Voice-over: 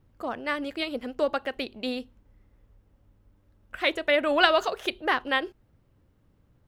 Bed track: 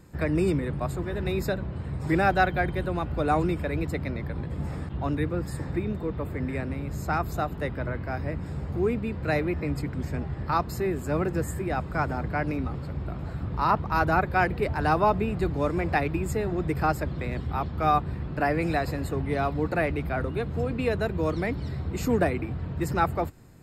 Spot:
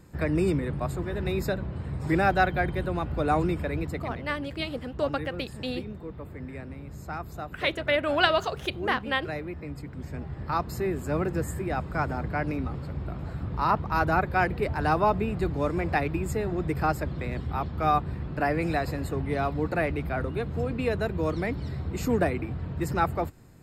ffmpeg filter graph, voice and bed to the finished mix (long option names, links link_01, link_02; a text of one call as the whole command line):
ffmpeg -i stem1.wav -i stem2.wav -filter_complex "[0:a]adelay=3800,volume=-2dB[link_01];[1:a]volume=7dB,afade=type=out:start_time=3.62:duration=0.77:silence=0.398107,afade=type=in:start_time=9.84:duration=0.99:silence=0.421697[link_02];[link_01][link_02]amix=inputs=2:normalize=0" out.wav